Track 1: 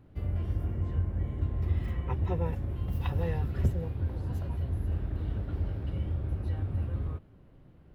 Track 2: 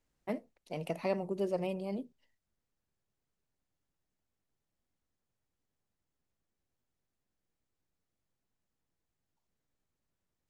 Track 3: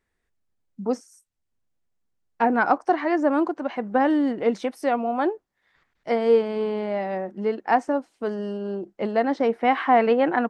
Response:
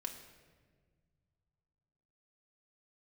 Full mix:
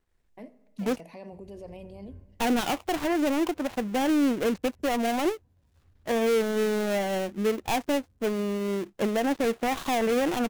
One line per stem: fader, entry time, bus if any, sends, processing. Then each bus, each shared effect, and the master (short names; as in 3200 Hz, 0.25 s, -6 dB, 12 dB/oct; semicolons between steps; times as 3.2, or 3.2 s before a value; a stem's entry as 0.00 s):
-18.0 dB, 1.15 s, bus A, send -17.5 dB, auto duck -22 dB, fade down 0.20 s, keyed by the third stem
-5.0 dB, 0.10 s, bus A, send -11.5 dB, dry
0.0 dB, 0.00 s, no bus, no send, switching dead time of 0.27 ms; low shelf 93 Hz +10.5 dB
bus A: 0.0 dB, Butterworth band-stop 1300 Hz, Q 6.2; limiter -37 dBFS, peak gain reduction 12.5 dB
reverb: on, RT60 1.6 s, pre-delay 4 ms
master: limiter -17 dBFS, peak gain reduction 10 dB